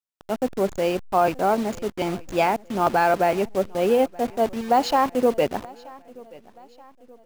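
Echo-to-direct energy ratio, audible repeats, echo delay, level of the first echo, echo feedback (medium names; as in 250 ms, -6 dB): -22.0 dB, 2, 928 ms, -23.0 dB, 48%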